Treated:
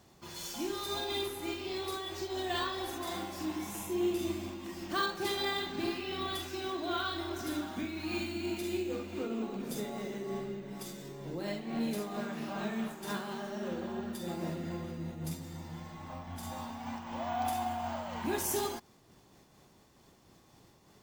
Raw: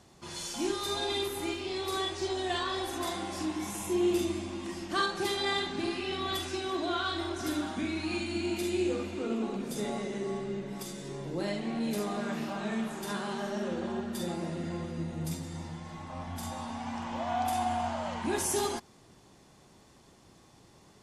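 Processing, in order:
bad sample-rate conversion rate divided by 2×, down none, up hold
amplitude modulation by smooth noise, depth 65%

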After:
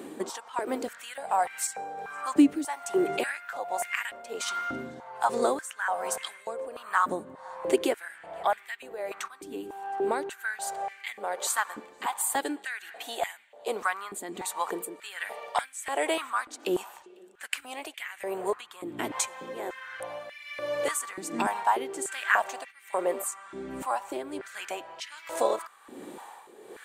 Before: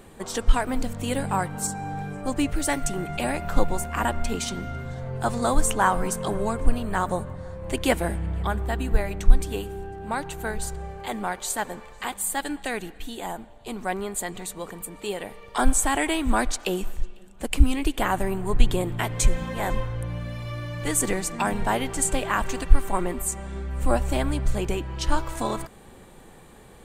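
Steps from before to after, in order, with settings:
downward compressor 2.5 to 1, threshold −31 dBFS, peak gain reduction 17 dB
amplitude tremolo 1.3 Hz, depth 68%
high-pass on a step sequencer 3.4 Hz 290–2,100 Hz
level +3.5 dB

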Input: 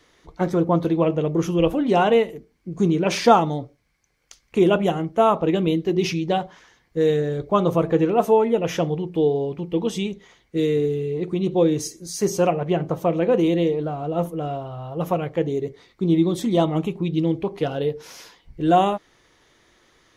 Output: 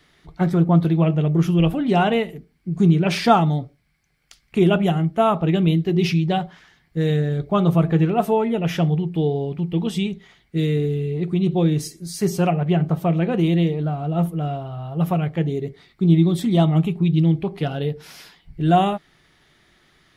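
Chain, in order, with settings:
thirty-one-band graphic EQ 160 Hz +8 dB, 315 Hz −4 dB, 500 Hz −11 dB, 1,000 Hz −7 dB, 6,300 Hz −9 dB
level +2 dB

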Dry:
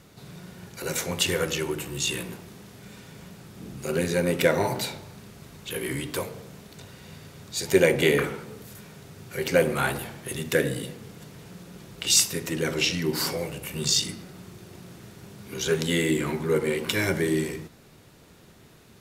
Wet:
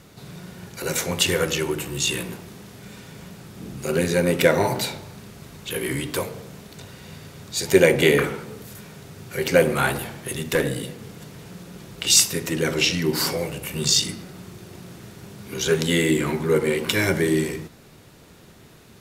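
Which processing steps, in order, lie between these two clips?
0:10.31–0:10.99: tube saturation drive 16 dB, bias 0.35
level +4 dB

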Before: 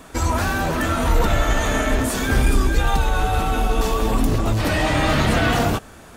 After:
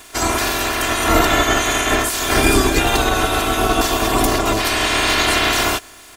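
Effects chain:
ceiling on every frequency bin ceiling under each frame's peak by 21 dB
comb filter 2.9 ms, depth 64%
bit reduction 9 bits

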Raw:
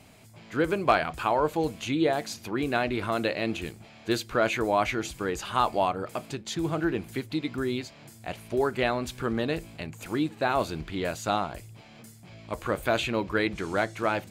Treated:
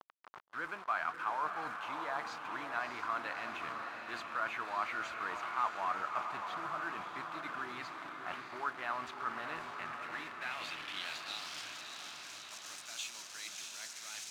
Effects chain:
low-pass that shuts in the quiet parts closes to 1,500 Hz, open at −24 dBFS
parametric band 470 Hz −10 dB 1.1 octaves
reversed playback
downward compressor 6 to 1, threshold −40 dBFS, peak gain reduction 19 dB
reversed playback
bit reduction 8 bits
band-pass filter sweep 1,200 Hz → 6,100 Hz, 0:09.70–0:11.78
feedback delay with all-pass diffusion 633 ms, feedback 65%, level −5.5 dB
level +11 dB

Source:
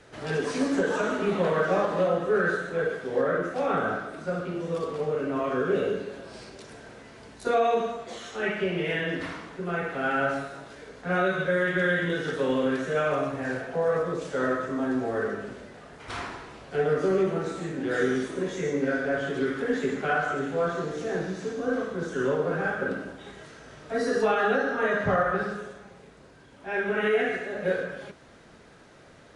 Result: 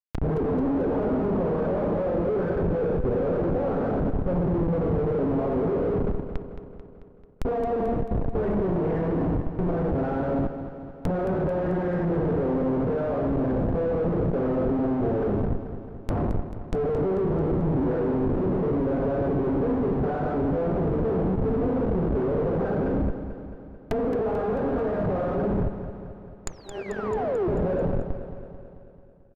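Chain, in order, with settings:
sound drawn into the spectrogram fall, 0:26.47–0:27.48, 330–7,100 Hz −23 dBFS
comparator with hysteresis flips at −32.5 dBFS
treble cut that deepens with the level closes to 670 Hz, closed at −29.5 dBFS
on a send: repeating echo 220 ms, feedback 60%, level −10.5 dB
on the sum: level +4.5 dB

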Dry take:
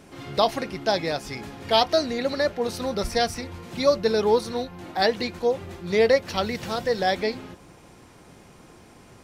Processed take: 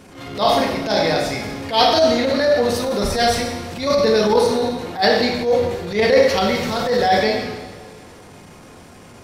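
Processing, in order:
coupled-rooms reverb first 0.93 s, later 2.9 s, from −18 dB, DRR −1.5 dB
transient designer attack −11 dB, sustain +2 dB
level +4.5 dB

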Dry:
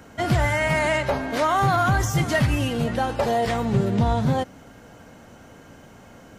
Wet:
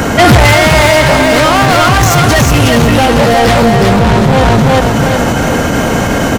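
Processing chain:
soft clipping −30.5 dBFS, distortion −5 dB
repeating echo 365 ms, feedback 32%, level −3 dB
boost into a limiter +35.5 dB
level −1 dB

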